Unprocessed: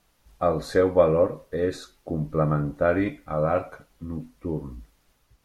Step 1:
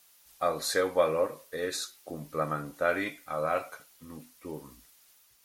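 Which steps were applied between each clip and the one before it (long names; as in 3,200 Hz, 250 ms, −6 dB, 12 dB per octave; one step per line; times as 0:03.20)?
spectral tilt +4.5 dB per octave
level −3 dB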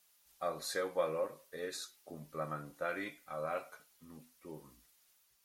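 flanger 0.52 Hz, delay 4.7 ms, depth 1.1 ms, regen −49%
level −5 dB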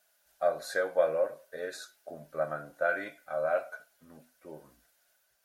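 hollow resonant body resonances 640/1,500 Hz, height 16 dB, ringing for 20 ms
level −2 dB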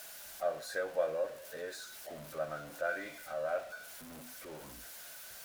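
converter with a step at zero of −39.5 dBFS
one half of a high-frequency compander encoder only
level −7 dB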